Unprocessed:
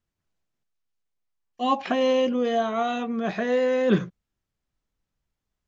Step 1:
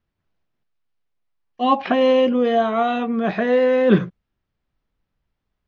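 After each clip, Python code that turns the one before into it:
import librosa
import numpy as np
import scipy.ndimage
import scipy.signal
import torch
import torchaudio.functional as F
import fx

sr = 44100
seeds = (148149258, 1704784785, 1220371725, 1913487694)

y = scipy.signal.sosfilt(scipy.signal.bessel(8, 3300.0, 'lowpass', norm='mag', fs=sr, output='sos'), x)
y = F.gain(torch.from_numpy(y), 6.0).numpy()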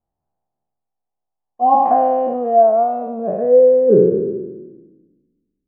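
y = fx.spec_trails(x, sr, decay_s=1.47)
y = fx.filter_sweep_lowpass(y, sr, from_hz=780.0, to_hz=290.0, start_s=2.28, end_s=5.3, q=6.4)
y = F.gain(torch.from_numpy(y), -8.5).numpy()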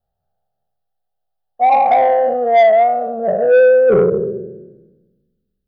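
y = fx.fixed_phaser(x, sr, hz=1500.0, stages=8)
y = 10.0 ** (-12.5 / 20.0) * np.tanh(y / 10.0 ** (-12.5 / 20.0))
y = F.gain(torch.from_numpy(y), 6.5).numpy()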